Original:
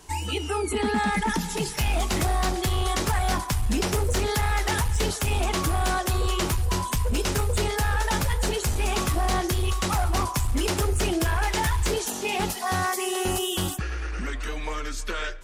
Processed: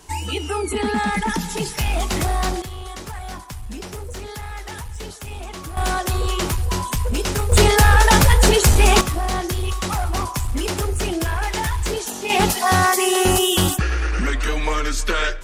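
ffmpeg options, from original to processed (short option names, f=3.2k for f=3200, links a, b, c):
-af "asetnsamples=n=441:p=0,asendcmd='2.62 volume volume -8dB;5.77 volume volume 3dB;7.52 volume volume 12dB;9.01 volume volume 1.5dB;12.3 volume volume 9.5dB',volume=3dB"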